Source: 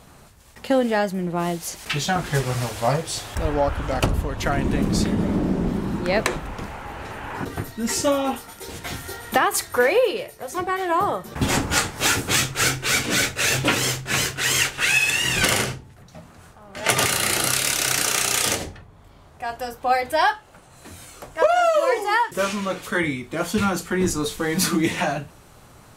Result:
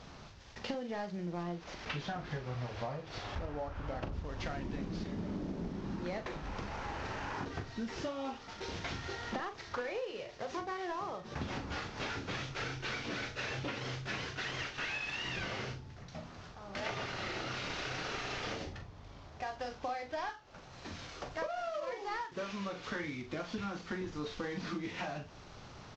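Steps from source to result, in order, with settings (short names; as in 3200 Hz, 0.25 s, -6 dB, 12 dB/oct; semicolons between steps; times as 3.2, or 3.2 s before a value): CVSD 32 kbps; 1.43–4.12 high shelf 3600 Hz -9 dB; compressor 10:1, threshold -33 dBFS, peak gain reduction 19.5 dB; doubler 40 ms -9.5 dB; gain -3.5 dB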